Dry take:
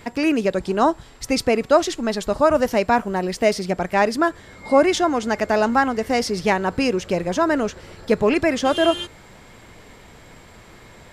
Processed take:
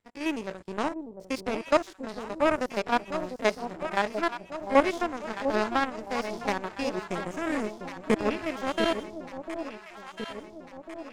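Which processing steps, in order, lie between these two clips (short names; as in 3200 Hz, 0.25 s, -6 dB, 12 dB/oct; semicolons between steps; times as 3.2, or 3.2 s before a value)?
stepped spectrum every 50 ms; 6.97–8.16 graphic EQ 250/1000/2000/4000/8000 Hz +5/-10/+9/-11/+10 dB; power-law curve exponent 2; on a send: echo with dull and thin repeats by turns 0.699 s, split 810 Hz, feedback 73%, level -7.5 dB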